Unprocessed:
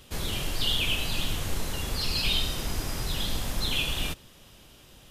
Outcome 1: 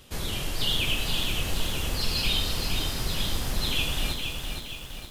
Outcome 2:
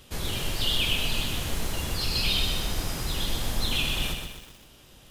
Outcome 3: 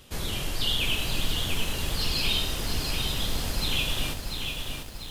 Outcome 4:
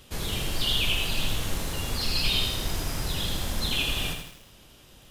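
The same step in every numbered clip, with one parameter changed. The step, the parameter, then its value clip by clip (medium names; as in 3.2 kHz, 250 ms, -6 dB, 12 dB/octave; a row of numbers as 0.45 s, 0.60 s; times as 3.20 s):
bit-crushed delay, time: 467 ms, 125 ms, 691 ms, 81 ms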